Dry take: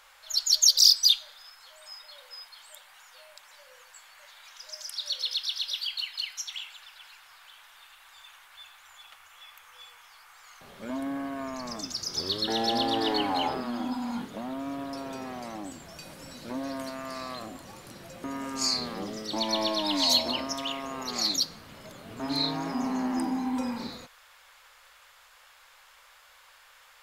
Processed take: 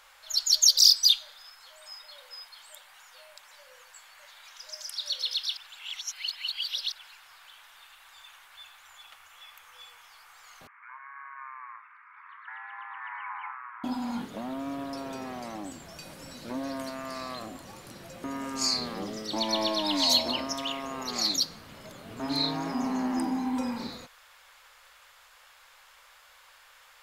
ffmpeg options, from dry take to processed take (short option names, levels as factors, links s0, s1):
-filter_complex "[0:a]asettb=1/sr,asplit=3[s0][s1][s2];[s0]atrim=end=10.674[s3];[s1]atrim=start=10.67:end=13.84,asetpts=PTS-STARTPTS,afade=t=in:d=0.004:c=qsin,afade=t=out:st=3.166:d=0.004:c=qsin,asuperpass=centerf=1500:order=12:qfactor=1.1[s4];[s2]atrim=start=13.836[s5];[s3][s4]acrossfade=d=0.004:c1=hsin:c2=qsin[s6];[s6][s5]acrossfade=d=0.004:c1=qsin:c2=hsin,asplit=3[s7][s8][s9];[s7]atrim=end=5.572[s10];[s8]atrim=start=5.568:end=6.922,asetpts=PTS-STARTPTS,areverse[s11];[s9]atrim=start=6.918[s12];[s10][s11]acrossfade=d=0.004:c1=hsin:c2=hsin[s13];[s13][s12]acrossfade=d=0.004:c1=hsin:c2=hsin"